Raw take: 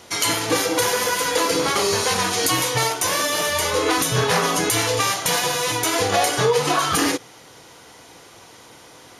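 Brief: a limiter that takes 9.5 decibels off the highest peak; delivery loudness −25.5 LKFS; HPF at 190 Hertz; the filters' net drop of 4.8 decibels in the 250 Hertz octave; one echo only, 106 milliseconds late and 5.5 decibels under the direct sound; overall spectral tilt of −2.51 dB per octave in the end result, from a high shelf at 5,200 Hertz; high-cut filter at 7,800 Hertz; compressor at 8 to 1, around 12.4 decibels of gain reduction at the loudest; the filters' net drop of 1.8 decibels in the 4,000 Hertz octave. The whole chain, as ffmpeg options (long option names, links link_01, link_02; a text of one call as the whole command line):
ffmpeg -i in.wav -af "highpass=190,lowpass=7800,equalizer=frequency=250:width_type=o:gain=-5.5,equalizer=frequency=4000:width_type=o:gain=-6,highshelf=frequency=5200:gain=8.5,acompressor=threshold=-29dB:ratio=8,alimiter=level_in=1dB:limit=-24dB:level=0:latency=1,volume=-1dB,aecho=1:1:106:0.531,volume=7dB" out.wav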